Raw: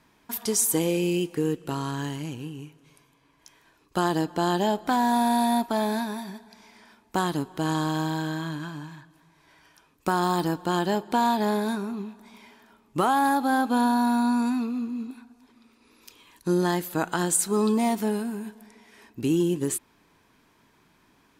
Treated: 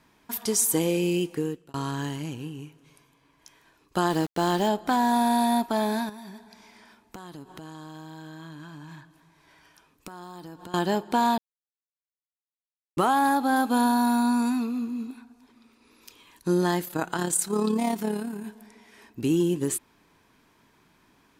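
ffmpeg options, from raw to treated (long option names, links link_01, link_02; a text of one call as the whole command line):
ffmpeg -i in.wav -filter_complex "[0:a]asettb=1/sr,asplit=3[link_01][link_02][link_03];[link_01]atrim=end=4.104[link_04];[link_02]atrim=start=4.1:end=4.69,asetpts=PTS-STARTPTS,afade=type=in:duration=0.004:curve=qsin,afade=type=out:start_time=0.586:duration=0.004:curve=qsin,aeval=exprs='val(0)*gte(abs(val(0)),0.0178)':channel_layout=same[link_05];[link_03]atrim=start=4.686[link_06];[link_04][link_05]acrossfade=duration=0.004:curve1=hsin:curve2=qsin[link_07];[link_07][link_06]acrossfade=duration=0.004:curve1=qsin:curve2=hsin,asettb=1/sr,asplit=3[link_08][link_09][link_10];[link_08]atrim=end=6.094[link_11];[link_09]atrim=start=6.09:end=10.74,asetpts=PTS-STARTPTS,afade=type=in:duration=0.004:curve=qsin,afade=type=out:start_time=4.646:duration=0.004:curve=qsin,acompressor=threshold=-38dB:ratio=12:attack=3.2:release=140:knee=1:detection=peak[link_12];[link_10]atrim=start=10.736[link_13];[link_11][link_12]acrossfade=duration=0.004:curve1=hsin:curve2=qsin[link_14];[link_14][link_13]acrossfade=duration=0.004:curve1=qsin:curve2=hsin,asettb=1/sr,asplit=3[link_15][link_16][link_17];[link_15]atrim=end=13.564[link_18];[link_16]atrim=start=13.56:end=15.11,asetpts=PTS-STARTPTS,afade=type=in:duration=0.004:curve=qsin,afade=type=out:start_time=1.546:duration=0.004:curve=qsin,highshelf=frequency=7500:gain=8[link_19];[link_17]atrim=start=15.106[link_20];[link_18][link_19]acrossfade=duration=0.004:curve1=hsin:curve2=qsin[link_21];[link_21][link_20]acrossfade=duration=0.004:curve1=qsin:curve2=hsin,asettb=1/sr,asplit=3[link_22][link_23][link_24];[link_22]atrim=end=16.854[link_25];[link_23]atrim=start=16.85:end=18.44,asetpts=PTS-STARTPTS,afade=type=in:duration=0.004:curve=qsin,afade=type=out:start_time=1.586:duration=0.004:curve=qsin,tremolo=f=35:d=0.519[link_26];[link_24]atrim=start=18.436[link_27];[link_25][link_26]acrossfade=duration=0.004:curve1=hsin:curve2=qsin[link_28];[link_28][link_27]acrossfade=duration=0.004:curve1=qsin:curve2=hsin,asplit=4[link_29][link_30][link_31][link_32];[link_29]atrim=end=1.74,asetpts=PTS-STARTPTS,afade=type=out:start_time=1.31:duration=0.43[link_33];[link_30]atrim=start=1.74:end=11.38,asetpts=PTS-STARTPTS,afade=type=in:duration=0.004:curve=hsin,afade=type=out:start_time=9.636:duration=0.004:curve=hsin[link_34];[link_31]atrim=start=11.38:end=12.97,asetpts=PTS-STARTPTS,volume=0[link_35];[link_32]atrim=start=12.97,asetpts=PTS-STARTPTS,afade=type=in:duration=0.004:curve=hsin[link_36];[link_33][link_34][link_35][link_36]concat=n=4:v=0:a=1" out.wav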